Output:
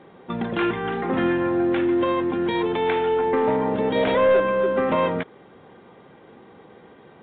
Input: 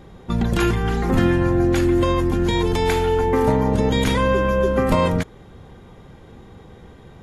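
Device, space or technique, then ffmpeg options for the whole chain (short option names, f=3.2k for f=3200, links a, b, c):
telephone: -filter_complex "[0:a]asettb=1/sr,asplit=3[a][b][c];[a]atrim=end=3.954[d];[b]atrim=start=3.95:end=4.4,asetpts=PTS-STARTPTS,afade=t=in:d=0.004:c=qsin,afade=t=out:st=0.446:d=0.004:c=qsin,equalizer=f=620:w=2.8:g=15[e];[c]atrim=start=4.396[f];[d][e]acrossfade=d=0.004:c1=hsin:c2=qsin[g];[g][f]acrossfade=d=0.004:c1=qsin:c2=hsin,highpass=260,lowpass=3.3k,asoftclip=type=tanh:threshold=-12dB" -ar 8000 -c:a pcm_mulaw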